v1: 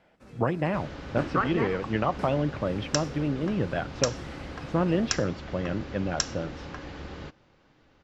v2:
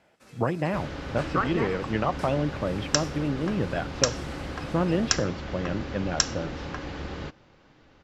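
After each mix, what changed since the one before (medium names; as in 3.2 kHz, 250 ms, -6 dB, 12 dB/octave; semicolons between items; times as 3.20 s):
first sound: add tilt EQ +3 dB/octave; second sound +4.5 dB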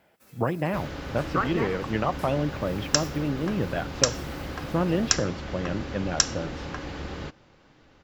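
first sound -5.5 dB; master: remove Bessel low-pass 6.8 kHz, order 4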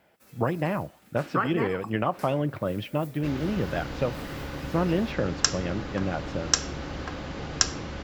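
second sound: entry +2.50 s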